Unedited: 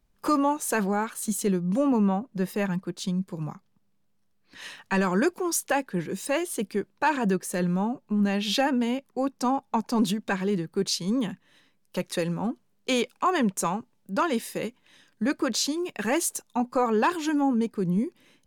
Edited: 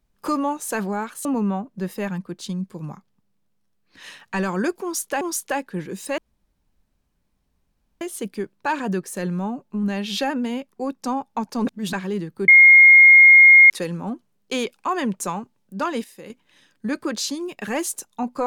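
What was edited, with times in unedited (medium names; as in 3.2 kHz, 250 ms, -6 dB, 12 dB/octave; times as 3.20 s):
1.25–1.83 s: delete
5.41–5.79 s: loop, 2 plays
6.38 s: insert room tone 1.83 s
10.04–10.30 s: reverse
10.85–12.07 s: bleep 2.14 kHz -6 dBFS
14.41–14.67 s: gain -9.5 dB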